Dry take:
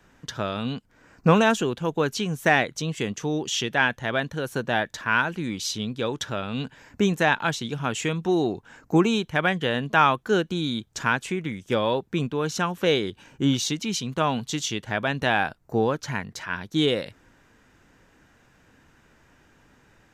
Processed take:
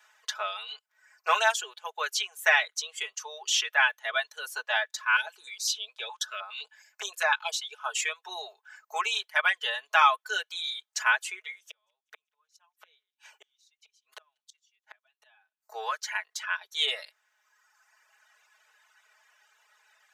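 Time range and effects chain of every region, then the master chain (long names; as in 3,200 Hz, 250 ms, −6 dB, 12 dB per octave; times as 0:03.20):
0:05.06–0:07.96: notch filter 1,900 Hz + notch on a step sequencer 9.7 Hz 290–3,100 Hz
0:11.67–0:15.63: gate with flip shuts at −21 dBFS, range −38 dB + delay with a high-pass on its return 192 ms, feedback 55%, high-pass 2,400 Hz, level −23 dB
whole clip: reverb reduction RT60 1.5 s; Bessel high-pass filter 1,100 Hz, order 8; comb filter 4.7 ms, depth 87%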